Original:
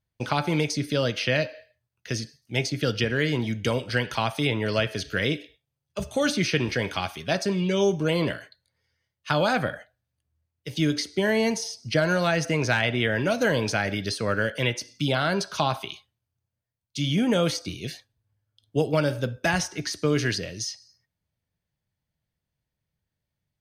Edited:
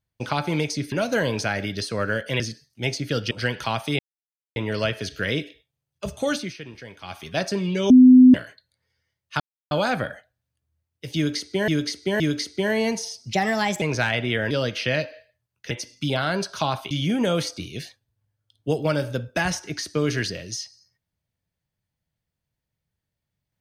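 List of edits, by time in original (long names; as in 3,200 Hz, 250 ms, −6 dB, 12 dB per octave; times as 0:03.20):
0:00.92–0:02.12: swap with 0:13.21–0:14.69
0:03.03–0:03.82: remove
0:04.50: splice in silence 0.57 s
0:06.22–0:07.21: duck −14.5 dB, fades 0.26 s
0:07.84–0:08.28: beep over 254 Hz −6.5 dBFS
0:09.34: splice in silence 0.31 s
0:10.79–0:11.31: repeat, 3 plays
0:11.92–0:12.52: play speed 123%
0:15.89–0:16.99: remove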